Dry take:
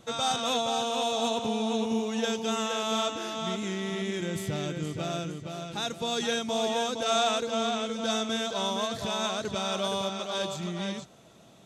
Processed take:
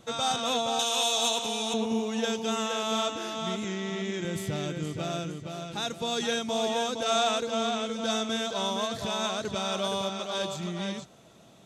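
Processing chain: 0.79–1.74 s: tilt EQ +3.5 dB/octave; 3.64–4.25 s: elliptic band-pass 140–7200 Hz

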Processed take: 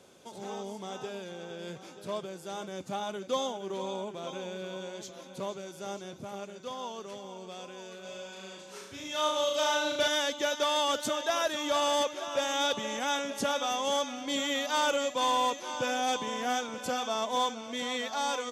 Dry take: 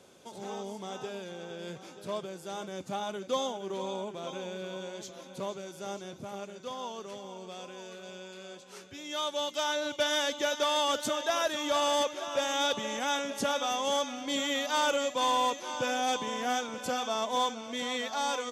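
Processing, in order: 8.01–10.08 s: flutter echo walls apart 6.2 m, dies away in 0.73 s

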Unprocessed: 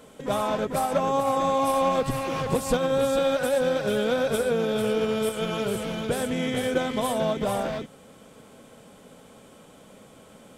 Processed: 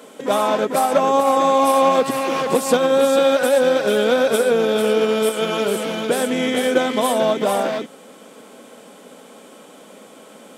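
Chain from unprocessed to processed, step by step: high-pass 220 Hz 24 dB/octave; trim +8 dB

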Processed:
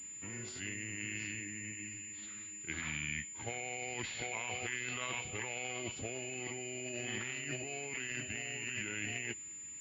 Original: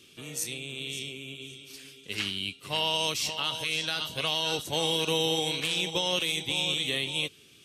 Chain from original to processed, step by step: tape speed -22%; compressor with a negative ratio -33 dBFS, ratio -1; class-D stage that switches slowly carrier 7.1 kHz; trim -7 dB

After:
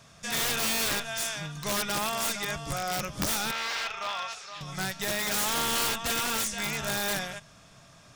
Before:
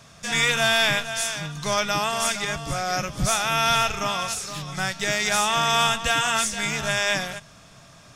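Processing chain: integer overflow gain 17 dB; 3.51–4.61 s: three-band isolator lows -19 dB, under 550 Hz, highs -23 dB, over 5.2 kHz; trim -5 dB

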